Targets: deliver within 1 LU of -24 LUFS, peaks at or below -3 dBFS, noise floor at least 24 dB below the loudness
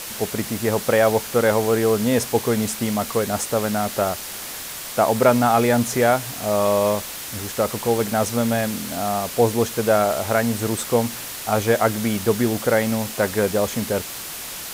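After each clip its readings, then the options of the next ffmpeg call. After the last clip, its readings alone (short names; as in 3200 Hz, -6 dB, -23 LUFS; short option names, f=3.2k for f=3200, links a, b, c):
noise floor -33 dBFS; noise floor target -45 dBFS; loudness -21.0 LUFS; peak -2.0 dBFS; loudness target -24.0 LUFS
-> -af "afftdn=nr=12:nf=-33"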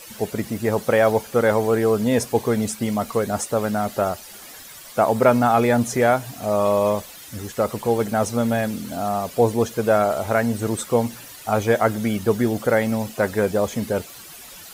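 noise floor -41 dBFS; noise floor target -46 dBFS
-> -af "afftdn=nr=6:nf=-41"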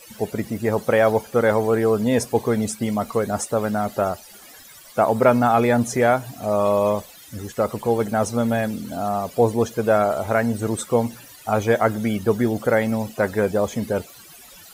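noise floor -45 dBFS; noise floor target -46 dBFS
-> -af "afftdn=nr=6:nf=-45"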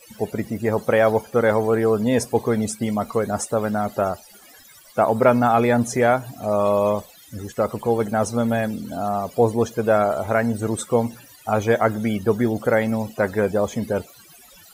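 noise floor -48 dBFS; loudness -21.5 LUFS; peak -2.0 dBFS; loudness target -24.0 LUFS
-> -af "volume=-2.5dB"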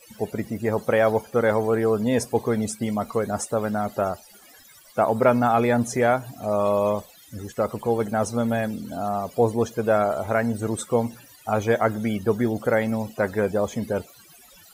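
loudness -24.0 LUFS; peak -4.5 dBFS; noise floor -51 dBFS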